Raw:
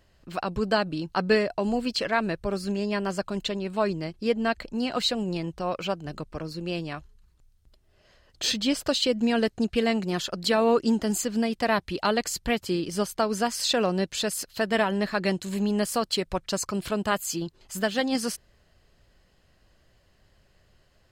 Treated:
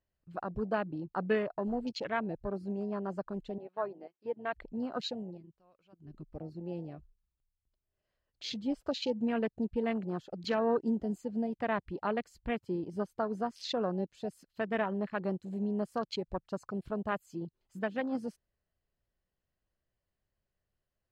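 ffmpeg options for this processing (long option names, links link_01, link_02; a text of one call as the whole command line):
ffmpeg -i in.wav -filter_complex "[0:a]asettb=1/sr,asplit=3[link_01][link_02][link_03];[link_01]atrim=end=3.584[link_04];[link_02]atrim=start=3.58:end=4.53,asetpts=PTS-STARTPTS,afade=type=in:duration=0.004:curve=qsin,afade=type=out:start_time=0.946:duration=0.004:curve=qsin,highpass=470,lowpass=3400[link_05];[link_03]atrim=start=4.526[link_06];[link_04][link_05]acrossfade=duration=0.004:curve1=hsin:curve2=qsin[link_07];[link_07][link_06]acrossfade=duration=0.004:curve1=qsin:curve2=hsin,asplit=3[link_08][link_09][link_10];[link_08]atrim=end=5.43,asetpts=PTS-STARTPTS,afade=type=out:start_time=5.04:duration=0.39:silence=0.223872[link_11];[link_09]atrim=start=5.43:end=5.9,asetpts=PTS-STARTPTS,volume=-13dB[link_12];[link_10]atrim=start=5.9,asetpts=PTS-STARTPTS,afade=type=in:duration=0.39:silence=0.223872[link_13];[link_11][link_12][link_13]concat=n=3:v=0:a=1,afwtdn=0.0316,highshelf=frequency=3700:gain=-9,volume=-7.5dB" out.wav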